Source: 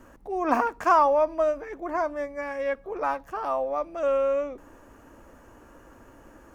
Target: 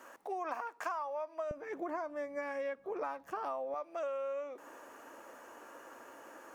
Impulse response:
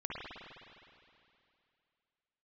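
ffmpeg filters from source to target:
-af "asetnsamples=nb_out_samples=441:pad=0,asendcmd='1.51 highpass f 180;3.74 highpass f 490',highpass=610,acompressor=threshold=-38dB:ratio=12,volume=2.5dB"

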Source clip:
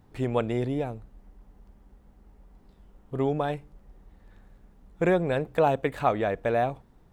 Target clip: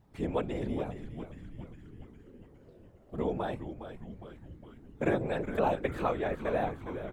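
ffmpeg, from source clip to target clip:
ffmpeg -i in.wav -filter_complex "[0:a]afftfilt=real='hypot(re,im)*cos(2*PI*random(0))':imag='hypot(re,im)*sin(2*PI*random(1))':win_size=512:overlap=0.75,asplit=9[link_01][link_02][link_03][link_04][link_05][link_06][link_07][link_08][link_09];[link_02]adelay=410,afreqshift=-120,volume=-9.5dB[link_10];[link_03]adelay=820,afreqshift=-240,volume=-13.5dB[link_11];[link_04]adelay=1230,afreqshift=-360,volume=-17.5dB[link_12];[link_05]adelay=1640,afreqshift=-480,volume=-21.5dB[link_13];[link_06]adelay=2050,afreqshift=-600,volume=-25.6dB[link_14];[link_07]adelay=2460,afreqshift=-720,volume=-29.6dB[link_15];[link_08]adelay=2870,afreqshift=-840,volume=-33.6dB[link_16];[link_09]adelay=3280,afreqshift=-960,volume=-37.6dB[link_17];[link_01][link_10][link_11][link_12][link_13][link_14][link_15][link_16][link_17]amix=inputs=9:normalize=0" out.wav

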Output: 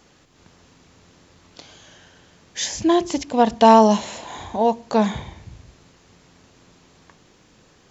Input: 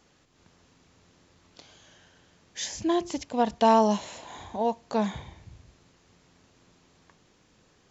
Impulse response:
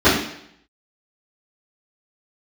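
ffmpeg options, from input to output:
-filter_complex "[0:a]asplit=2[link_01][link_02];[1:a]atrim=start_sample=2205[link_03];[link_02][link_03]afir=irnorm=-1:irlink=0,volume=-47.5dB[link_04];[link_01][link_04]amix=inputs=2:normalize=0,volume=8dB"

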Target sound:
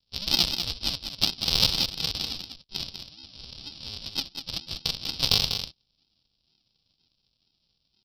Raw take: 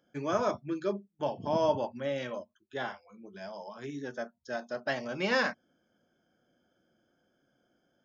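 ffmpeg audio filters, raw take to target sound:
ffmpeg -i in.wav -filter_complex "[0:a]highpass=86,asetrate=62367,aresample=44100,atempo=0.707107,aresample=11025,acrusher=samples=27:mix=1:aa=0.000001:lfo=1:lforange=16.2:lforate=2.1,aresample=44100,aexciter=amount=15:drive=8.1:freq=3000,aeval=exprs='0.891*(cos(1*acos(clip(val(0)/0.891,-1,1)))-cos(1*PI/2))+0.0562*(cos(5*acos(clip(val(0)/0.891,-1,1)))-cos(5*PI/2))+0.1*(cos(7*acos(clip(val(0)/0.891,-1,1)))-cos(7*PI/2))+0.0112*(cos(8*acos(clip(val(0)/0.891,-1,1)))-cos(8*PI/2))':channel_layout=same,asplit=2[link_01][link_02];[link_02]aecho=0:1:195:0.422[link_03];[link_01][link_03]amix=inputs=2:normalize=0,volume=-1.5dB" out.wav

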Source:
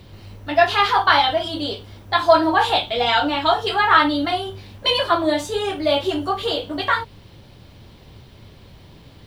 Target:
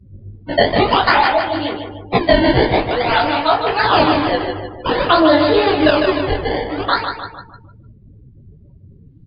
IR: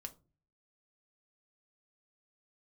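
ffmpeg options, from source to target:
-filter_complex "[0:a]equalizer=frequency=3200:width_type=o:width=0.22:gain=-5.5,bandreject=frequency=60:width_type=h:width=6,bandreject=frequency=120:width_type=h:width=6,bandreject=frequency=180:width_type=h:width=6,acrusher=samples=20:mix=1:aa=0.000001:lfo=1:lforange=32:lforate=0.51,asettb=1/sr,asplit=3[link_01][link_02][link_03];[link_01]atrim=end=1.124[link_04];[link_02]atrim=start=1.12:end=1.52,asetpts=PTS-STARTPTS,afade=type=in:duration=0.004:curve=qsin,afade=type=out:start_time=0.396:duration=0.004:curve=qsin,bass=frequency=250:gain=-4,treble=frequency=4000:gain=-11[link_05];[link_03]atrim=start=1.516[link_06];[link_04][link_05]acrossfade=duration=0.004:curve1=hsin:curve2=qsin[link_07];[link_07][link_06]acrossfade=duration=0.004:curve1=qsin:curve2=hsin,asettb=1/sr,asplit=3[link_08][link_09][link_10];[link_08]atrim=end=3.504[link_11];[link_09]atrim=start=3.5:end=4.13,asetpts=PTS-STARTPTS,afade=type=in:duration=0.004:curve=qsin,afade=type=out:start_time=0.626:duration=0.004:curve=qsin,afreqshift=18[link_12];[link_10]atrim=start=4.126[link_13];[link_11][link_12]acrossfade=duration=0.004:curve1=hsin:curve2=qsin[link_14];[link_14][link_13]acrossfade=duration=0.004:curve1=qsin:curve2=hsin,flanger=delay=15.5:depth=7.1:speed=2.3,asettb=1/sr,asplit=3[link_15][link_16][link_17];[link_15]atrim=end=5.094[link_18];[link_16]atrim=start=5.09:end=5.91,asetpts=PTS-STARTPTS,afade=type=in:duration=0.004:curve=qsin,afade=type=out:start_time=0.816:duration=0.004:curve=qsin,acontrast=71[link_19];[link_17]atrim=start=5.906[link_20];[link_18][link_19]acrossfade=duration=0.004:curve1=hsin:curve2=qsin[link_21];[link_21][link_20]acrossfade=duration=0.004:curve1=qsin:curve2=hsin,aecho=1:1:152|304|456|608|760|912:0.447|0.232|0.121|0.0628|0.0327|0.017,afftdn=noise_reduction=35:noise_floor=-40,alimiter=level_in=7.5dB:limit=-1dB:release=50:level=0:latency=1,volume=-1dB" -ar 11025 -c:a libmp3lame -b:a 32k

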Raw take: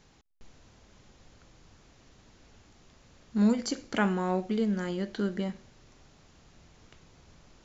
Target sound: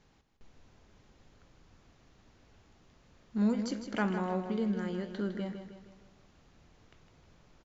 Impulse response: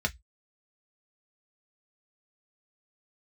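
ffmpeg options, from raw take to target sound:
-af "highshelf=frequency=5800:gain=-10,aecho=1:1:157|314|471|628|785:0.355|0.17|0.0817|0.0392|0.0188,volume=-4.5dB"

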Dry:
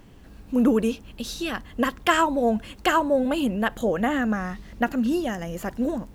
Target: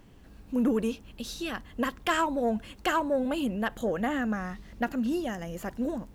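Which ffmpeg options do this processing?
ffmpeg -i in.wav -af "asoftclip=type=tanh:threshold=-11dB,volume=-5dB" out.wav

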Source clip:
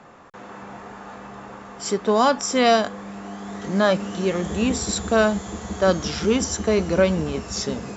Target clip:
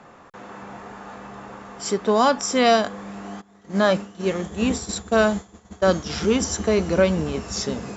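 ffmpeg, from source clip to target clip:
ffmpeg -i in.wav -filter_complex "[0:a]asplit=3[link_01][link_02][link_03];[link_01]afade=type=out:start_time=3.4:duration=0.02[link_04];[link_02]agate=range=-33dB:threshold=-20dB:ratio=3:detection=peak,afade=type=in:start_time=3.4:duration=0.02,afade=type=out:start_time=6.09:duration=0.02[link_05];[link_03]afade=type=in:start_time=6.09:duration=0.02[link_06];[link_04][link_05][link_06]amix=inputs=3:normalize=0" out.wav

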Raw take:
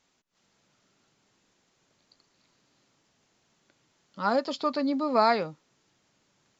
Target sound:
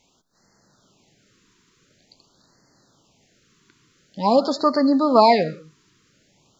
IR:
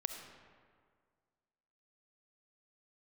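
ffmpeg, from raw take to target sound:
-filter_complex "[0:a]asplit=2[link_01][link_02];[1:a]atrim=start_sample=2205,afade=type=out:start_time=0.24:duration=0.01,atrim=end_sample=11025,lowshelf=frequency=210:gain=9.5[link_03];[link_02][link_03]afir=irnorm=-1:irlink=0,volume=-7dB[link_04];[link_01][link_04]amix=inputs=2:normalize=0,afftfilt=real='re*(1-between(b*sr/1024,640*pow(3000/640,0.5+0.5*sin(2*PI*0.47*pts/sr))/1.41,640*pow(3000/640,0.5+0.5*sin(2*PI*0.47*pts/sr))*1.41))':imag='im*(1-between(b*sr/1024,640*pow(3000/640,0.5+0.5*sin(2*PI*0.47*pts/sr))/1.41,640*pow(3000/640,0.5+0.5*sin(2*PI*0.47*pts/sr))*1.41))':win_size=1024:overlap=0.75,volume=6dB"

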